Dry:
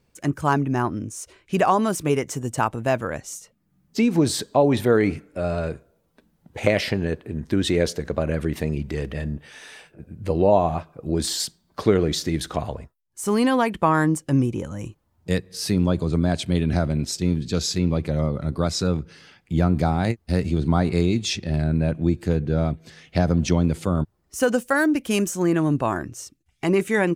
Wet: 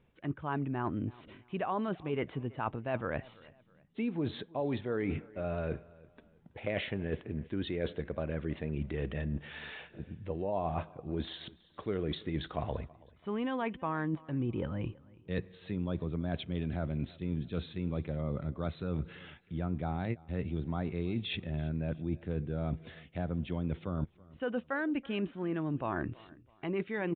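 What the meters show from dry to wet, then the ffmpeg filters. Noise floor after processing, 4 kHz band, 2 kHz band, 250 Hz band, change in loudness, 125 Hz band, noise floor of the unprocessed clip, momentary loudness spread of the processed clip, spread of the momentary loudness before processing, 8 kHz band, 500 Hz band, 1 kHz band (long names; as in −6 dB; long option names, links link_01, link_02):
−64 dBFS, −15.0 dB, −13.0 dB, −13.0 dB, −13.5 dB, −12.5 dB, −67 dBFS, 8 LU, 12 LU, below −40 dB, −14.0 dB, −14.0 dB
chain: -af "areverse,acompressor=threshold=-30dB:ratio=6,areverse,aecho=1:1:328|656:0.075|0.0262,aresample=8000,aresample=44100,volume=-1.5dB"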